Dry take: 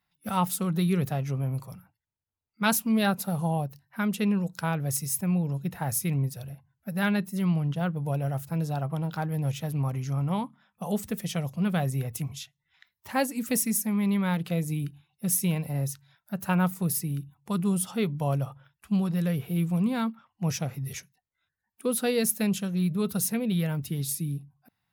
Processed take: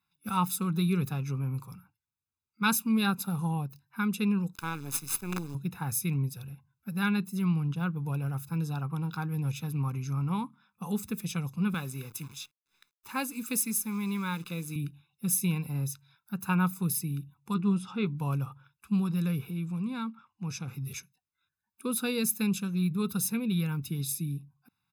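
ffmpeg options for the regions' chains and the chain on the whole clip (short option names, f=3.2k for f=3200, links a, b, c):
-filter_complex "[0:a]asettb=1/sr,asplit=3[a][b][c];[a]atrim=end=4.554[d];[b]atrim=start=4.55:end=5.55,asetpts=PTS-STARTPTS,afade=t=in:d=0.004:c=qsin,afade=t=out:st=0.996:d=0.004:c=qsin,lowshelf=f=240:g=-5.5,acrusher=bits=5:dc=4:mix=0:aa=0.000001[e];[c]atrim=start=5.546[f];[d][e]acrossfade=d=0.004:c1=hsin:c2=qsin[g];[g][f]acrossfade=d=0.004:c1=qsin:c2=hsin,asettb=1/sr,asplit=3[h][i][j];[h]atrim=end=11.744[k];[i]atrim=start=11.74:end=14.76,asetpts=PTS-STARTPTS,afade=t=in:d=0.004:c=qsin,afade=t=out:st=3.016:d=0.004:c=qsin,highpass=f=300:p=1,bandreject=f=730:w=8.1,acrusher=bits=9:dc=4:mix=0:aa=0.000001[l];[j]atrim=start=14.756[m];[k][l]acrossfade=d=0.004:c1=hsin:c2=qsin[n];[n][m]acrossfade=d=0.004:c1=qsin:c2=hsin,asettb=1/sr,asplit=3[o][p][q];[o]atrim=end=17.544[r];[p]atrim=start=17.54:end=18.07,asetpts=PTS-STARTPTS,afade=t=in:d=0.004:c=qsin,afade=t=out:st=0.526:d=0.004:c=qsin,lowpass=3.8k,asplit=2[s][t];[t]adelay=15,volume=-11.5dB[u];[s][u]amix=inputs=2:normalize=0,atrim=end_sample=23373[v];[q]atrim=start=18.066[w];[r][v]acrossfade=d=0.004:c1=hsin:c2=qsin[x];[x][w]acrossfade=d=0.004:c1=qsin:c2=hsin,asettb=1/sr,asplit=3[y][z][aa];[y]atrim=end=19.504[ab];[z]atrim=start=19.5:end=20.68,asetpts=PTS-STARTPTS,afade=t=in:d=0.004:c=qsin,afade=t=out:st=1.176:d=0.004:c=qsin,lowpass=9.3k,acompressor=threshold=-37dB:ratio=1.5:attack=3.2:release=140:knee=1:detection=peak[ac];[aa]atrim=start=20.676[ad];[ab][ac]acrossfade=d=0.004:c1=hsin:c2=qsin[ae];[ae][ad]acrossfade=d=0.004:c1=qsin:c2=hsin,lowshelf=f=88:g=-10.5,aecho=1:1:0.8:0.89,volume=-4.5dB"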